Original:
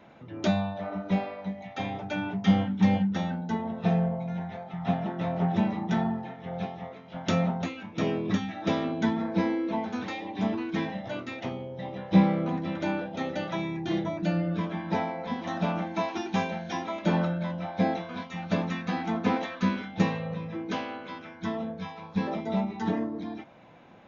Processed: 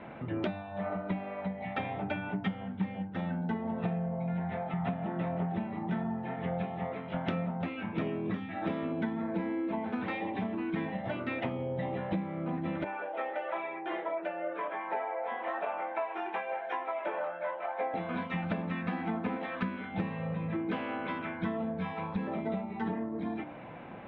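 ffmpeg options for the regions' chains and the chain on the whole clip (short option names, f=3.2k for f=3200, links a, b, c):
-filter_complex "[0:a]asettb=1/sr,asplit=3[a][b][c];[a]atrim=end=12.844[d];[b]atrim=start=12.84:end=17.94,asetpts=PTS-STARTPTS,afade=t=in:d=0.004:c=qsin,afade=t=out:st=5.096:d=0.004:c=qsin,highpass=f=470:w=0.5412,highpass=f=470:w=1.3066,equalizer=f=4.4k:w=1.4:g=-14.5,flanger=delay=19:depth=2.8:speed=1[e];[c]atrim=start=17.936[f];[d][e]acrossfade=d=0.004:c1=hsin:c2=qsin[g];[g][f]acrossfade=d=0.004:c1=qsin:c2=hsin,lowpass=f=2.8k:w=0.5412,lowpass=f=2.8k:w=1.3066,acompressor=threshold=-38dB:ratio=10,bandreject=f=98.67:t=h:w=4,bandreject=f=197.34:t=h:w=4,bandreject=f=296.01:t=h:w=4,bandreject=f=394.68:t=h:w=4,bandreject=f=493.35:t=h:w=4,bandreject=f=592.02:t=h:w=4,bandreject=f=690.69:t=h:w=4,bandreject=f=789.36:t=h:w=4,bandreject=f=888.03:t=h:w=4,bandreject=f=986.7:t=h:w=4,bandreject=f=1.08537k:t=h:w=4,bandreject=f=1.18404k:t=h:w=4,bandreject=f=1.28271k:t=h:w=4,bandreject=f=1.38138k:t=h:w=4,bandreject=f=1.48005k:t=h:w=4,bandreject=f=1.57872k:t=h:w=4,bandreject=f=1.67739k:t=h:w=4,volume=8dB"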